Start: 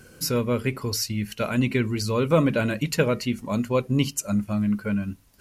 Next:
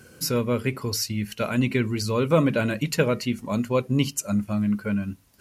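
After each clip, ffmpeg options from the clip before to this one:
-af "highpass=60"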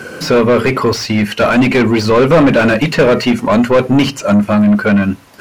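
-filter_complex "[0:a]acrossover=split=5200[a][b];[b]acompressor=threshold=-43dB:ratio=4:attack=1:release=60[c];[a][c]amix=inputs=2:normalize=0,asplit=2[d][e];[e]highpass=f=720:p=1,volume=28dB,asoftclip=type=tanh:threshold=-8dB[f];[d][f]amix=inputs=2:normalize=0,lowpass=f=1.2k:p=1,volume=-6dB,bandreject=f=60:t=h:w=6,bandreject=f=120:t=h:w=6,volume=7.5dB"

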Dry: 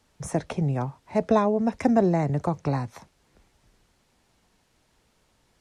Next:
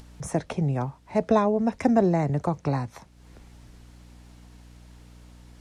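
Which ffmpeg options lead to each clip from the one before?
-af "aeval=exprs='val(0)+0.00158*(sin(2*PI*60*n/s)+sin(2*PI*2*60*n/s)/2+sin(2*PI*3*60*n/s)/3+sin(2*PI*4*60*n/s)/4+sin(2*PI*5*60*n/s)/5)':c=same,acompressor=mode=upward:threshold=-39dB:ratio=2.5"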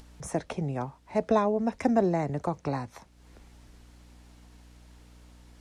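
-af "equalizer=f=130:t=o:w=1.1:g=-5.5,volume=-2.5dB"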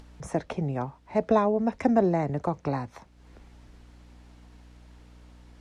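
-af "lowpass=f=3.5k:p=1,volume=2dB"

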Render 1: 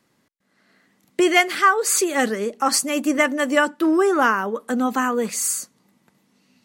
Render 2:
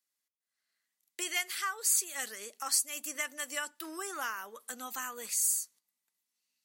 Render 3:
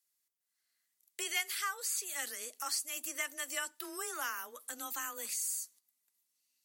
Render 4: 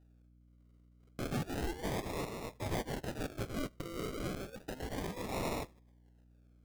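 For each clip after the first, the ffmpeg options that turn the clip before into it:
-af "agate=range=-13dB:threshold=-49dB:ratio=16:detection=peak,aderivative,acompressor=threshold=-38dB:ratio=1.5"
-filter_complex "[0:a]acrossover=split=4400[a][b];[b]acompressor=threshold=-41dB:ratio=4:attack=1:release=60[c];[a][c]amix=inputs=2:normalize=0,aemphasis=mode=production:type=cd,afreqshift=19,volume=-2.5dB"
-af "acrusher=samples=40:mix=1:aa=0.000001:lfo=1:lforange=24:lforate=0.32,asoftclip=type=tanh:threshold=-30dB,aeval=exprs='val(0)+0.000631*(sin(2*PI*60*n/s)+sin(2*PI*2*60*n/s)/2+sin(2*PI*3*60*n/s)/3+sin(2*PI*4*60*n/s)/4+sin(2*PI*5*60*n/s)/5)':c=same,volume=2dB"

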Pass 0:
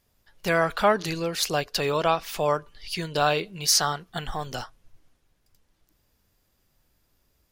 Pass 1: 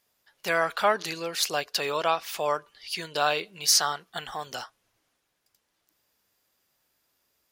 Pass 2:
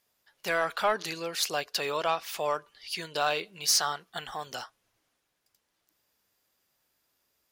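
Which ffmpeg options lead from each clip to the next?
-af "highpass=f=650:p=1"
-af "asoftclip=type=tanh:threshold=-13dB,volume=-2dB"

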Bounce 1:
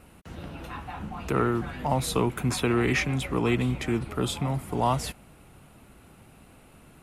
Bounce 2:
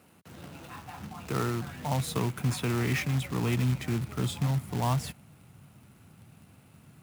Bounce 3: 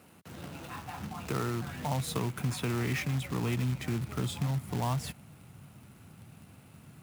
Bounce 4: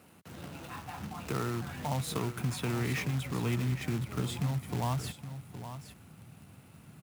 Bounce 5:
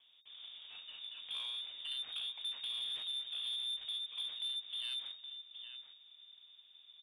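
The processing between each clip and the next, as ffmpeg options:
-af "acrusher=bits=2:mode=log:mix=0:aa=0.000001,highpass=f=100:w=0.5412,highpass=f=100:w=1.3066,asubboost=boost=4.5:cutoff=170,volume=-6dB"
-af "acompressor=threshold=-34dB:ratio=2,volume=2dB"
-af "aecho=1:1:817:0.282,volume=-1dB"
-filter_complex "[0:a]acrossover=split=140|1100[a][b][c];[c]aeval=exprs='abs(val(0))':c=same[d];[a][b][d]amix=inputs=3:normalize=0,lowpass=f=3.1k:t=q:w=0.5098,lowpass=f=3.1k:t=q:w=0.6013,lowpass=f=3.1k:t=q:w=0.9,lowpass=f=3.1k:t=q:w=2.563,afreqshift=-3700,asoftclip=type=tanh:threshold=-27dB,volume=-6.5dB"

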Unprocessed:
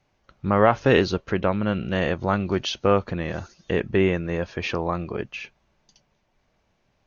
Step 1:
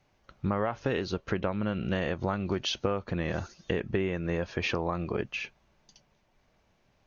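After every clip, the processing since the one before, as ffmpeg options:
-af "acompressor=threshold=-25dB:ratio=12"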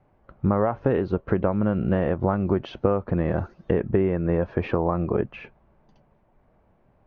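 -af "lowpass=1.1k,volume=8dB"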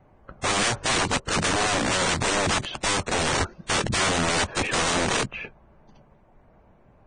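-af "aeval=exprs='(mod(15.8*val(0)+1,2)-1)/15.8':c=same,volume=5.5dB" -ar 22050 -c:a libvorbis -b:a 16k

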